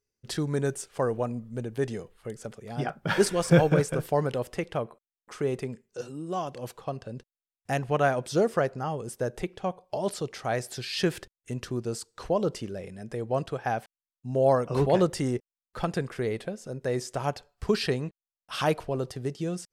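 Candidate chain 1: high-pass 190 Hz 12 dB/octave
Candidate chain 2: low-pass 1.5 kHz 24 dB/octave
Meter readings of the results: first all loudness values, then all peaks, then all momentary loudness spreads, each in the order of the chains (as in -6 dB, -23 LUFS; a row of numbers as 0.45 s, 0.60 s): -30.0 LUFS, -29.5 LUFS; -7.5 dBFS, -9.5 dBFS; 15 LU, 14 LU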